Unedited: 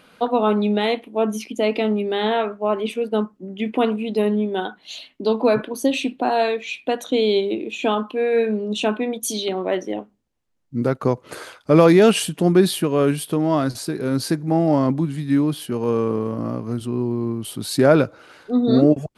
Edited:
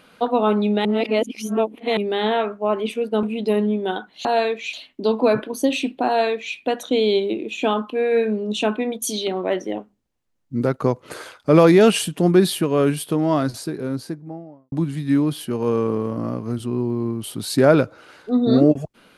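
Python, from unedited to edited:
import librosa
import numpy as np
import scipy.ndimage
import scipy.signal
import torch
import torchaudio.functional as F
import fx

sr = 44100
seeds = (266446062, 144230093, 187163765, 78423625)

y = fx.studio_fade_out(x, sr, start_s=13.54, length_s=1.39)
y = fx.edit(y, sr, fx.reverse_span(start_s=0.85, length_s=1.12),
    fx.cut(start_s=3.23, length_s=0.69),
    fx.duplicate(start_s=6.28, length_s=0.48, to_s=4.94), tone=tone)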